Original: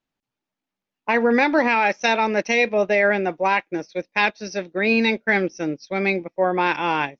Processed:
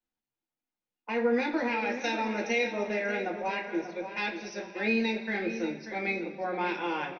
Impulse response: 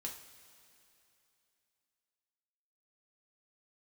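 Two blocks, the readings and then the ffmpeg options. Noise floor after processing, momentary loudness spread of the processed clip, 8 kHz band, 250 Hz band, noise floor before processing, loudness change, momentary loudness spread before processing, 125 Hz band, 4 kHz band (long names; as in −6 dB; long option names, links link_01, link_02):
below −85 dBFS, 7 LU, can't be measured, −8.0 dB, below −85 dBFS, −10.0 dB, 9 LU, −11.0 dB, −9.5 dB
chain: -filter_complex "[0:a]acrossover=split=280|340|2500[link_01][link_02][link_03][link_04];[link_03]alimiter=limit=-16.5dB:level=0:latency=1[link_05];[link_01][link_02][link_05][link_04]amix=inputs=4:normalize=0,asplit=2[link_06][link_07];[link_07]adelay=587,lowpass=frequency=4300:poles=1,volume=-10dB,asplit=2[link_08][link_09];[link_09]adelay=587,lowpass=frequency=4300:poles=1,volume=0.34,asplit=2[link_10][link_11];[link_11]adelay=587,lowpass=frequency=4300:poles=1,volume=0.34,asplit=2[link_12][link_13];[link_13]adelay=587,lowpass=frequency=4300:poles=1,volume=0.34[link_14];[link_06][link_08][link_10][link_12][link_14]amix=inputs=5:normalize=0[link_15];[1:a]atrim=start_sample=2205,asetrate=70560,aresample=44100[link_16];[link_15][link_16]afir=irnorm=-1:irlink=0,volume=-3dB"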